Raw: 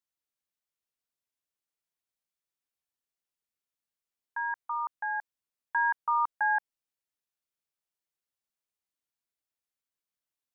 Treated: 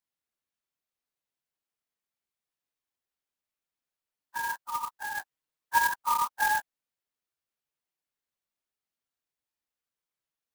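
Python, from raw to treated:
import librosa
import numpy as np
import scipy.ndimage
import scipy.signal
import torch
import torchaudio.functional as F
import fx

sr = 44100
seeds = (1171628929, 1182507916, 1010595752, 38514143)

y = fx.phase_scramble(x, sr, seeds[0], window_ms=50)
y = fx.comb(y, sr, ms=6.5, depth=0.71, at=(5.0, 5.78))
y = fx.clock_jitter(y, sr, seeds[1], jitter_ms=0.04)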